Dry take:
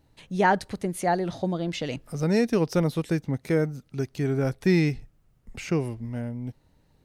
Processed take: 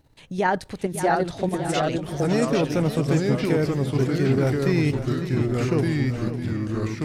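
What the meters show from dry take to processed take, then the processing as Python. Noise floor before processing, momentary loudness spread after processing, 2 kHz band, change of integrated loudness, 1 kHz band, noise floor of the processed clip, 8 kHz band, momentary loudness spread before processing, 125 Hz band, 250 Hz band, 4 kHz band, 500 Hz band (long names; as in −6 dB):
−64 dBFS, 6 LU, +2.5 dB, +3.0 dB, +2.0 dB, −47 dBFS, +4.5 dB, 11 LU, +5.0 dB, +3.5 dB, +4.0 dB, +3.5 dB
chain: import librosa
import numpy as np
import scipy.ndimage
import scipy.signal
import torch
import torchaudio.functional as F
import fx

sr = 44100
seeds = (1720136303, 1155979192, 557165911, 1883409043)

p1 = fx.peak_eq(x, sr, hz=200.0, db=-3.0, octaves=0.23)
p2 = fx.level_steps(p1, sr, step_db=9)
p3 = fx.echo_pitch(p2, sr, ms=596, semitones=-2, count=3, db_per_echo=-3.0)
p4 = p3 + fx.echo_feedback(p3, sr, ms=553, feedback_pct=47, wet_db=-12, dry=0)
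y = F.gain(torch.from_numpy(p4), 6.0).numpy()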